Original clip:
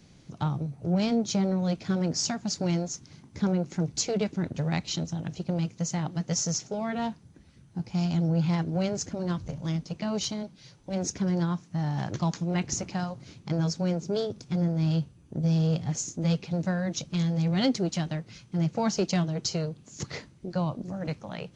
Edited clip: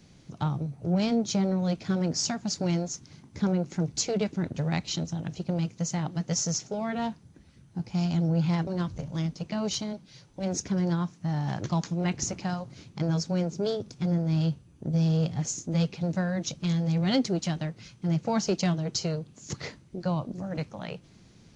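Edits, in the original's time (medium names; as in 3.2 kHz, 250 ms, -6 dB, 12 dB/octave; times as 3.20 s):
8.67–9.17 s: delete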